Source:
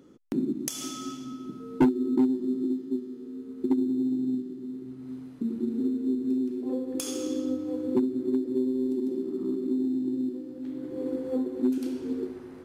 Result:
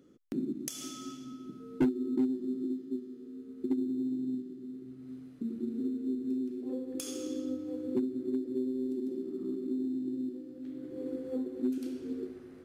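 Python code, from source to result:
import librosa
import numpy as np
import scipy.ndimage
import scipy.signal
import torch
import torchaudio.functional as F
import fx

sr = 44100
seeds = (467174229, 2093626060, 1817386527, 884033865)

y = fx.peak_eq(x, sr, hz=920.0, db=-9.5, octaves=0.43)
y = y * librosa.db_to_amplitude(-6.0)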